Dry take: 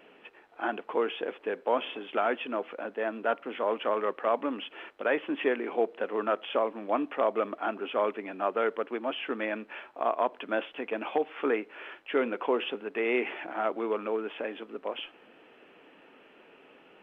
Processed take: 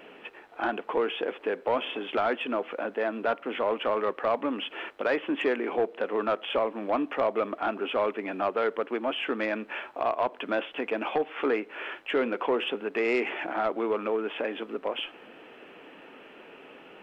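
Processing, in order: in parallel at +2 dB: compression, threshold -36 dBFS, peak gain reduction 14.5 dB; on the sum: saturation -16.5 dBFS, distortion -18 dB

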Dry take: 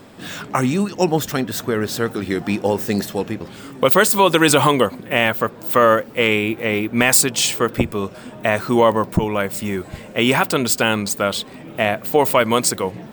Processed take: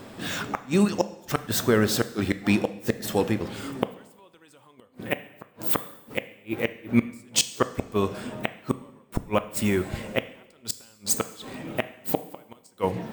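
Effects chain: inverted gate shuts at -8 dBFS, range -41 dB; two-slope reverb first 0.8 s, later 2.1 s, from -18 dB, DRR 11.5 dB

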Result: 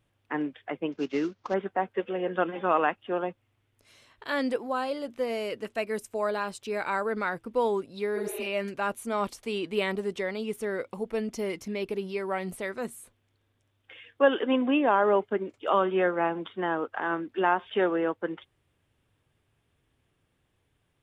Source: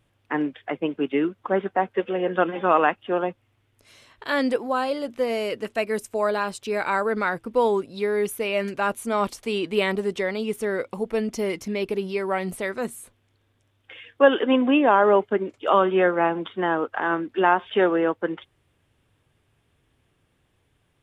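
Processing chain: 0.92–1.54 s: CVSD coder 32 kbps; 8.19–8.44 s: spectral replace 290–4400 Hz both; trim -5.5 dB

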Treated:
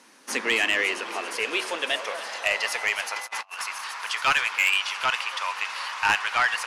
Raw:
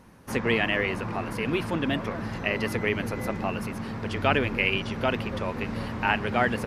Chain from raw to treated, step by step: on a send: feedback echo behind a high-pass 278 ms, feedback 81%, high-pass 5.4 kHz, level -7.5 dB; on the sum: high-pass sweep 270 Hz -> 1 kHz, 0.38–3.69 s; de-hum 373.1 Hz, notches 32; 3.16–3.66 s: compressor with a negative ratio -38 dBFS, ratio -0.5; frequency weighting ITU-R 468; saturation -13 dBFS, distortion -11 dB

